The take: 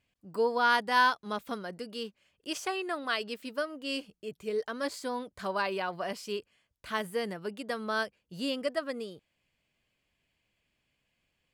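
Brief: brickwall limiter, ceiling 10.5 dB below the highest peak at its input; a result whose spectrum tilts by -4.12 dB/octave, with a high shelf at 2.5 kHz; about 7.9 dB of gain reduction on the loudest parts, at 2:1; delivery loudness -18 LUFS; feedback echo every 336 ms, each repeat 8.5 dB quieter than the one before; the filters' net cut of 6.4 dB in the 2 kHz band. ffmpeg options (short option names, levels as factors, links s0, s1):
-af "equalizer=f=2000:t=o:g=-6.5,highshelf=f=2500:g=-7.5,acompressor=threshold=0.0126:ratio=2,alimiter=level_in=3.76:limit=0.0631:level=0:latency=1,volume=0.266,aecho=1:1:336|672|1008|1344:0.376|0.143|0.0543|0.0206,volume=21.1"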